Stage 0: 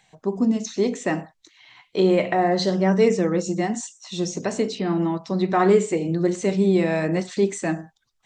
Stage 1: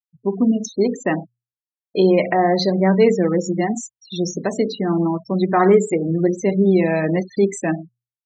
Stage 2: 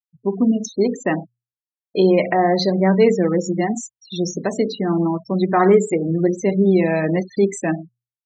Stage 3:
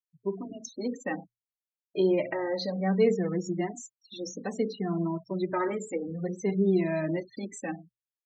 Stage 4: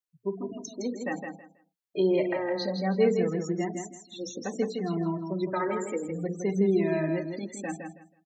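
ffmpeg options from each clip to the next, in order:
ffmpeg -i in.wav -af "afftfilt=real='re*gte(hypot(re,im),0.0398)':imag='im*gte(hypot(re,im),0.0398)':win_size=1024:overlap=0.75,bandreject=frequency=60:width_type=h:width=6,bandreject=frequency=120:width_type=h:width=6,volume=3.5dB" out.wav
ffmpeg -i in.wav -af anull out.wav
ffmpeg -i in.wav -filter_complex "[0:a]asplit=2[link_01][link_02];[link_02]adelay=2.4,afreqshift=-0.61[link_03];[link_01][link_03]amix=inputs=2:normalize=1,volume=-8.5dB" out.wav
ffmpeg -i in.wav -af "aecho=1:1:162|324|486:0.501|0.105|0.0221" out.wav

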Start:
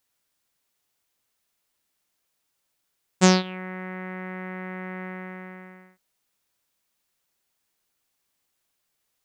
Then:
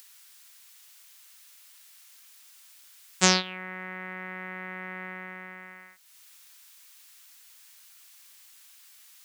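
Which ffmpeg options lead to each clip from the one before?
ffmpeg -i in.wav -filter_complex "[0:a]tiltshelf=frequency=910:gain=-6.5,acrossover=split=800[link_01][link_02];[link_02]acompressor=mode=upward:threshold=-34dB:ratio=2.5[link_03];[link_01][link_03]amix=inputs=2:normalize=0,volume=-3dB" out.wav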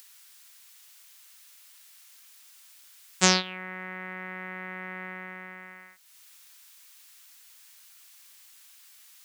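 ffmpeg -i in.wav -af anull out.wav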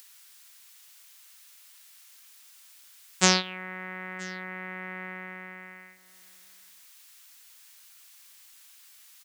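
ffmpeg -i in.wav -af "aecho=1:1:978:0.0668" out.wav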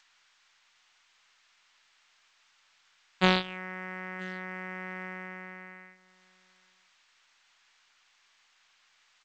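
ffmpeg -i in.wav -af "adynamicsmooth=sensitivity=2:basefreq=3100" -ar 16000 -c:a g722 out.g722

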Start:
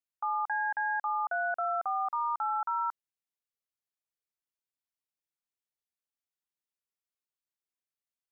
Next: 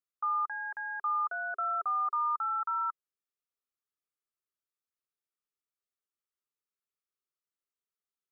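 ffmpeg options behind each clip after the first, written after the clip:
ffmpeg -i in.wav -af "equalizer=frequency=400:width_type=o:width=0.33:gain=11,equalizer=frequency=800:width_type=o:width=0.33:gain=-8,equalizer=frequency=1250:width_type=o:width=0.33:gain=12,volume=-6.5dB" out.wav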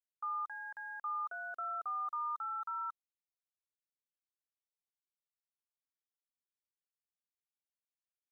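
ffmpeg -i in.wav -af "aeval=exprs='val(0)*gte(abs(val(0)),0.00141)':channel_layout=same,volume=-7.5dB" out.wav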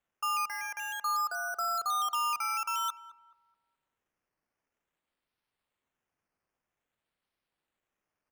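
ffmpeg -i in.wav -filter_complex "[0:a]acrossover=split=760|900[link_01][link_02][link_03];[link_03]acrusher=samples=9:mix=1:aa=0.000001:lfo=1:lforange=5.4:lforate=0.51[link_04];[link_01][link_02][link_04]amix=inputs=3:normalize=0,asplit=2[link_05][link_06];[link_06]adelay=213,lowpass=frequency=940:poles=1,volume=-13dB,asplit=2[link_07][link_08];[link_08]adelay=213,lowpass=frequency=940:poles=1,volume=0.47,asplit=2[link_09][link_10];[link_10]adelay=213,lowpass=frequency=940:poles=1,volume=0.47,asplit=2[link_11][link_12];[link_12]adelay=213,lowpass=frequency=940:poles=1,volume=0.47,asplit=2[link_13][link_14];[link_14]adelay=213,lowpass=frequency=940:poles=1,volume=0.47[link_15];[link_05][link_07][link_09][link_11][link_13][link_15]amix=inputs=6:normalize=0,volume=8dB" out.wav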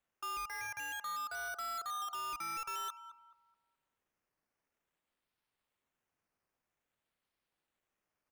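ffmpeg -i in.wav -af "alimiter=level_in=4dB:limit=-24dB:level=0:latency=1:release=184,volume=-4dB,asoftclip=type=tanh:threshold=-35.5dB,volume=-1.5dB" out.wav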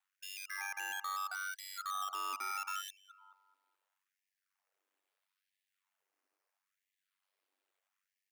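ffmpeg -i in.wav -af "aeval=exprs='val(0)*sin(2*PI*48*n/s)':channel_layout=same,afftfilt=real='re*gte(b*sr/1024,240*pow(1700/240,0.5+0.5*sin(2*PI*0.76*pts/sr)))':imag='im*gte(b*sr/1024,240*pow(1700/240,0.5+0.5*sin(2*PI*0.76*pts/sr)))':win_size=1024:overlap=0.75,volume=4dB" out.wav

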